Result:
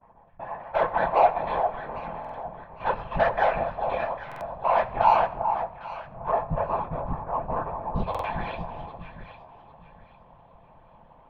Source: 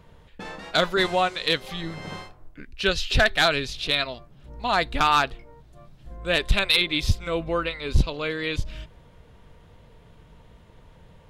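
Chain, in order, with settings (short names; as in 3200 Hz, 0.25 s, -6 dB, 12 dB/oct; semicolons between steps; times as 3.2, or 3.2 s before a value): minimum comb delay 1.2 ms; gate with hold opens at -43 dBFS; LPF 2100 Hz 24 dB/oct, from 6.29 s 1300 Hz, from 7.95 s 3000 Hz; band shelf 790 Hz +13 dB 1.3 oct; soft clip -6.5 dBFS, distortion -16 dB; chorus 0.38 Hz, delay 17.5 ms, depth 4.6 ms; whisperiser; echo with dull and thin repeats by turns 0.401 s, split 1100 Hz, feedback 51%, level -6 dB; reverb RT60 1.1 s, pre-delay 5 ms, DRR 9.5 dB; stuck buffer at 2.2/4.27/8.1, samples 2048, times 2; gain -4 dB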